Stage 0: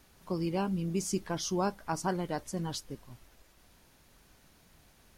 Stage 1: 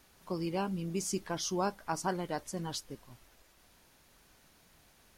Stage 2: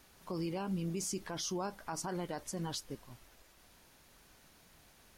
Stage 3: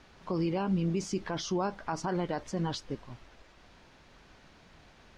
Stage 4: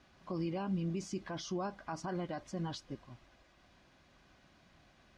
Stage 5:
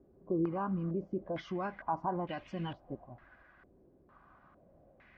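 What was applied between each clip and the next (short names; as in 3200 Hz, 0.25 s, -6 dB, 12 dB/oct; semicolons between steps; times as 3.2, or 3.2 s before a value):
low shelf 290 Hz -5.5 dB
limiter -30 dBFS, peak gain reduction 10.5 dB; gain +1 dB
air absorption 150 m; gain +7.5 dB
notch comb 450 Hz; gain -6 dB
stepped low-pass 2.2 Hz 420–2700 Hz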